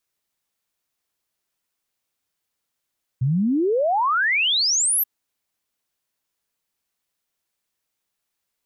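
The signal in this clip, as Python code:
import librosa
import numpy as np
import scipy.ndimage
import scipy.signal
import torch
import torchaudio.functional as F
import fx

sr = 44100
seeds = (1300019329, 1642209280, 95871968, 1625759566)

y = fx.ess(sr, length_s=1.83, from_hz=120.0, to_hz=13000.0, level_db=-17.0)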